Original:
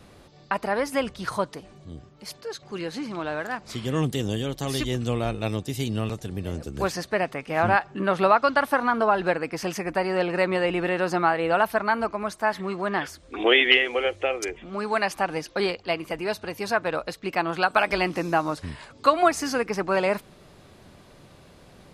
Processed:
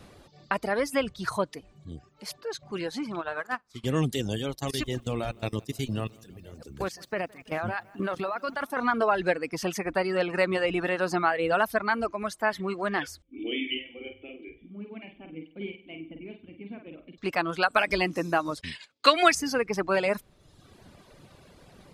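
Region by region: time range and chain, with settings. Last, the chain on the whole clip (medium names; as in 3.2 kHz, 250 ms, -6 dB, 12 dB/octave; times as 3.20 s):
3.21–3.84 s: peaking EQ 1.2 kHz +7 dB 0.8 oct + flutter echo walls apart 9.8 m, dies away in 0.33 s + upward expansion 2.5:1, over -39 dBFS
4.55–8.77 s: level held to a coarse grid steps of 14 dB + bit-crushed delay 165 ms, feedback 55%, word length 9-bit, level -14 dB
13.22–17.18 s: cascade formant filter i + flutter echo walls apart 8.5 m, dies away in 0.73 s
18.61–19.35 s: expander -38 dBFS + frequency weighting D
whole clip: reverb removal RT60 0.96 s; dynamic bell 870 Hz, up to -5 dB, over -35 dBFS, Q 2.2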